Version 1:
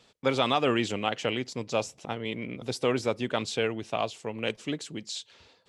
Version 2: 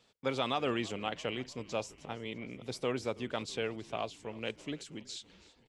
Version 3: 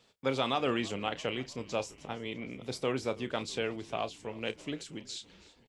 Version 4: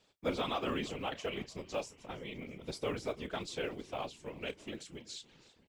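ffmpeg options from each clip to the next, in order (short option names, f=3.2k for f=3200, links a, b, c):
-filter_complex "[0:a]asplit=6[a][b][c][d][e][f];[b]adelay=327,afreqshift=-49,volume=-21dB[g];[c]adelay=654,afreqshift=-98,volume=-25dB[h];[d]adelay=981,afreqshift=-147,volume=-29dB[i];[e]adelay=1308,afreqshift=-196,volume=-33dB[j];[f]adelay=1635,afreqshift=-245,volume=-37.1dB[k];[a][g][h][i][j][k]amix=inputs=6:normalize=0,volume=-7.5dB"
-filter_complex "[0:a]asplit=2[a][b];[b]adelay=30,volume=-13dB[c];[a][c]amix=inputs=2:normalize=0,volume=2dB"
-af "afftfilt=real='hypot(re,im)*cos(2*PI*random(0))':imag='hypot(re,im)*sin(2*PI*random(1))':win_size=512:overlap=0.75,acrusher=bits=9:mode=log:mix=0:aa=0.000001,volume=1.5dB"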